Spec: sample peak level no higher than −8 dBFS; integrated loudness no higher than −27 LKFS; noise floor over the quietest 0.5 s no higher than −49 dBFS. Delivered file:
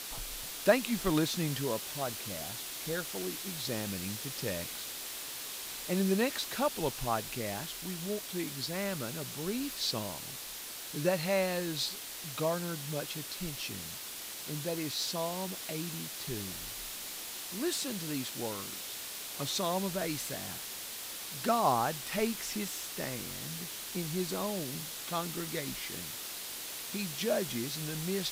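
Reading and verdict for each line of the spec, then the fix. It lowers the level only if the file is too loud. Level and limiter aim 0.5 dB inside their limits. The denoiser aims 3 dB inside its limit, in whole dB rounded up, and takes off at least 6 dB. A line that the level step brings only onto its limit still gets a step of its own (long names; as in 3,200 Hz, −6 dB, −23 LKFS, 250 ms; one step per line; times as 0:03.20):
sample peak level −11.5 dBFS: in spec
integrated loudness −34.5 LKFS: in spec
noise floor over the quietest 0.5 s −43 dBFS: out of spec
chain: broadband denoise 9 dB, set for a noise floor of −43 dBFS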